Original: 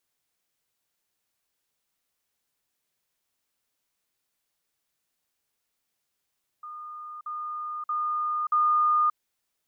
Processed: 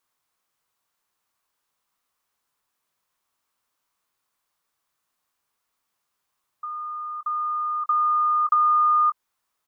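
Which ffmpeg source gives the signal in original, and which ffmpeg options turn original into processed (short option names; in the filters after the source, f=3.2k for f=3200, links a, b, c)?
-f lavfi -i "aevalsrc='pow(10,(-37+6*floor(t/0.63))/20)*sin(2*PI*1220*t)*clip(min(mod(t,0.63),0.58-mod(t,0.63))/0.005,0,1)':d=2.52:s=44100"
-filter_complex "[0:a]equalizer=f=1.1k:t=o:w=0.81:g=11,asplit=2[a][b];[b]adelay=20,volume=-13dB[c];[a][c]amix=inputs=2:normalize=0,acompressor=threshold=-17dB:ratio=6"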